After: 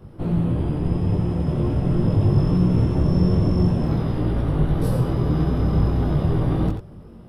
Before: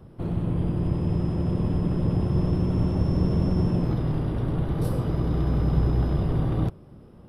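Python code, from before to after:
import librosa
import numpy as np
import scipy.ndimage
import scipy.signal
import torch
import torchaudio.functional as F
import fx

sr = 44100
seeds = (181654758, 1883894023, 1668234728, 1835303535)

p1 = x + fx.echo_single(x, sr, ms=88, db=-7.5, dry=0)
p2 = fx.detune_double(p1, sr, cents=15)
y = p2 * librosa.db_to_amplitude(7.5)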